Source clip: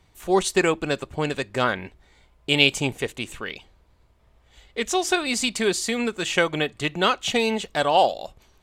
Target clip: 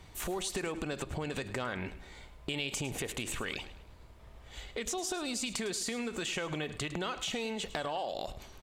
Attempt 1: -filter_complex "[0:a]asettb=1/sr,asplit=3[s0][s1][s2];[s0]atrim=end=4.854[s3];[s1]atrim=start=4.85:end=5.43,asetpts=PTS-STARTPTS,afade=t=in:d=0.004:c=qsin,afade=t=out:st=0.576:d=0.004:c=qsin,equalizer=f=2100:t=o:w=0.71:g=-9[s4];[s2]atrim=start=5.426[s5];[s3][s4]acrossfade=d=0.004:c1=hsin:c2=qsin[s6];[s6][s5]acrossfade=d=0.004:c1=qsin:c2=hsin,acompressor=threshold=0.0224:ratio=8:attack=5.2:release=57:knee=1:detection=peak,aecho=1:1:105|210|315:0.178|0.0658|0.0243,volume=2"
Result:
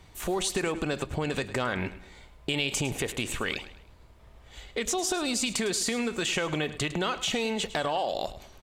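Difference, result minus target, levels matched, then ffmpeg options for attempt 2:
compression: peak gain reduction -7 dB
-filter_complex "[0:a]asettb=1/sr,asplit=3[s0][s1][s2];[s0]atrim=end=4.854[s3];[s1]atrim=start=4.85:end=5.43,asetpts=PTS-STARTPTS,afade=t=in:d=0.004:c=qsin,afade=t=out:st=0.576:d=0.004:c=qsin,equalizer=f=2100:t=o:w=0.71:g=-9[s4];[s2]atrim=start=5.426[s5];[s3][s4]acrossfade=d=0.004:c1=hsin:c2=qsin[s6];[s6][s5]acrossfade=d=0.004:c1=qsin:c2=hsin,acompressor=threshold=0.00891:ratio=8:attack=5.2:release=57:knee=1:detection=peak,aecho=1:1:105|210|315:0.178|0.0658|0.0243,volume=2"

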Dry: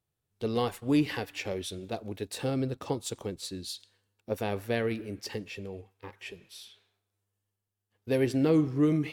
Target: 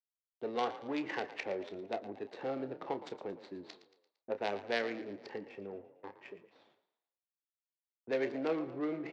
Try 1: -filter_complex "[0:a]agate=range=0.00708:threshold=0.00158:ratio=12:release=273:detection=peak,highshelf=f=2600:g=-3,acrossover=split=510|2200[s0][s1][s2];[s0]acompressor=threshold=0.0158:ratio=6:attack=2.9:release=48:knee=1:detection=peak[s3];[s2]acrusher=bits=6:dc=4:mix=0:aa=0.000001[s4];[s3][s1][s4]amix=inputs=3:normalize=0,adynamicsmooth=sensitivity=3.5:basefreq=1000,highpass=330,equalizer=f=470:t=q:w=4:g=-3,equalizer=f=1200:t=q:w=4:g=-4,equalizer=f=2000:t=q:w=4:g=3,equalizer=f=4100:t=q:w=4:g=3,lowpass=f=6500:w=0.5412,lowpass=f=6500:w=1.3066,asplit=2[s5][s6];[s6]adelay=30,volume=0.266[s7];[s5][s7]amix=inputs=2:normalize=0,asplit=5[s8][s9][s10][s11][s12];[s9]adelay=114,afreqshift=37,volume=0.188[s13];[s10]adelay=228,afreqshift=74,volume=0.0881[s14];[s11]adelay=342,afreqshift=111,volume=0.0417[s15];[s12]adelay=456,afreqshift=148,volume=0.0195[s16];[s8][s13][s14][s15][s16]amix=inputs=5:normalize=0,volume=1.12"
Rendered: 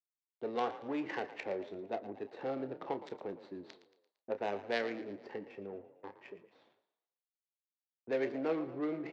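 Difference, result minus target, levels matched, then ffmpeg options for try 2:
4 kHz band -3.0 dB
-filter_complex "[0:a]agate=range=0.00708:threshold=0.00158:ratio=12:release=273:detection=peak,acrossover=split=510|2200[s0][s1][s2];[s0]acompressor=threshold=0.0158:ratio=6:attack=2.9:release=48:knee=1:detection=peak[s3];[s2]acrusher=bits=6:dc=4:mix=0:aa=0.000001[s4];[s3][s1][s4]amix=inputs=3:normalize=0,adynamicsmooth=sensitivity=3.5:basefreq=1000,highpass=330,equalizer=f=470:t=q:w=4:g=-3,equalizer=f=1200:t=q:w=4:g=-4,equalizer=f=2000:t=q:w=4:g=3,equalizer=f=4100:t=q:w=4:g=3,lowpass=f=6500:w=0.5412,lowpass=f=6500:w=1.3066,asplit=2[s5][s6];[s6]adelay=30,volume=0.266[s7];[s5][s7]amix=inputs=2:normalize=0,asplit=5[s8][s9][s10][s11][s12];[s9]adelay=114,afreqshift=37,volume=0.188[s13];[s10]adelay=228,afreqshift=74,volume=0.0881[s14];[s11]adelay=342,afreqshift=111,volume=0.0417[s15];[s12]adelay=456,afreqshift=148,volume=0.0195[s16];[s8][s13][s14][s15][s16]amix=inputs=5:normalize=0,volume=1.12"

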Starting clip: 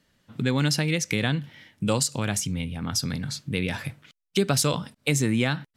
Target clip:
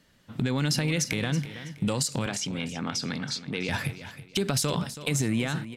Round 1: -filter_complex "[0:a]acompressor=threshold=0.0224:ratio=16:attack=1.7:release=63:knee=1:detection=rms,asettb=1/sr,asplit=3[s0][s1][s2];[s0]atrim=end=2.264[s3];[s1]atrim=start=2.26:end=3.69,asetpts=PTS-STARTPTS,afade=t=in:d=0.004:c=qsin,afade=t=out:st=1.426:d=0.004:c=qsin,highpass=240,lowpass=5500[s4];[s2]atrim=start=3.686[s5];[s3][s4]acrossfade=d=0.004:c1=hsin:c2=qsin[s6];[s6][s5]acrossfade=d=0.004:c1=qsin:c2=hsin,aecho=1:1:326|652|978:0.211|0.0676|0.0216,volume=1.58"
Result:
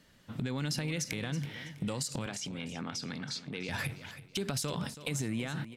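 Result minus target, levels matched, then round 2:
compression: peak gain reduction +8 dB
-filter_complex "[0:a]acompressor=threshold=0.0596:ratio=16:attack=1.7:release=63:knee=1:detection=rms,asettb=1/sr,asplit=3[s0][s1][s2];[s0]atrim=end=2.264[s3];[s1]atrim=start=2.26:end=3.69,asetpts=PTS-STARTPTS,afade=t=in:d=0.004:c=qsin,afade=t=out:st=1.426:d=0.004:c=qsin,highpass=240,lowpass=5500[s4];[s2]atrim=start=3.686[s5];[s3][s4]acrossfade=d=0.004:c1=hsin:c2=qsin[s6];[s6][s5]acrossfade=d=0.004:c1=qsin:c2=hsin,aecho=1:1:326|652|978:0.211|0.0676|0.0216,volume=1.58"

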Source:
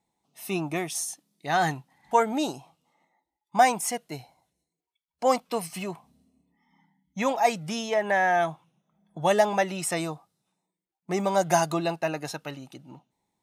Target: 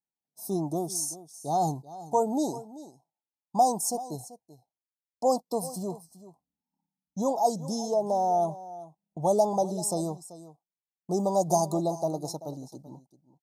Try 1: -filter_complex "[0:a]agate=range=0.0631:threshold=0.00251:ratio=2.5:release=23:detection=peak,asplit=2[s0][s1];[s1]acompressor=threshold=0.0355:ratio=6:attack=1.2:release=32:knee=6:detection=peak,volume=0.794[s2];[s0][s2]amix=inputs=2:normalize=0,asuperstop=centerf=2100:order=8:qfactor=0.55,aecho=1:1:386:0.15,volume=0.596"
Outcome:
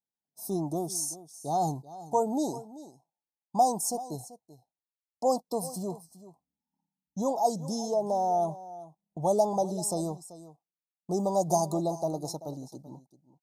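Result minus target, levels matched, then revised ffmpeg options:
compression: peak gain reduction +6.5 dB
-filter_complex "[0:a]agate=range=0.0631:threshold=0.00251:ratio=2.5:release=23:detection=peak,asplit=2[s0][s1];[s1]acompressor=threshold=0.0891:ratio=6:attack=1.2:release=32:knee=6:detection=peak,volume=0.794[s2];[s0][s2]amix=inputs=2:normalize=0,asuperstop=centerf=2100:order=8:qfactor=0.55,aecho=1:1:386:0.15,volume=0.596"

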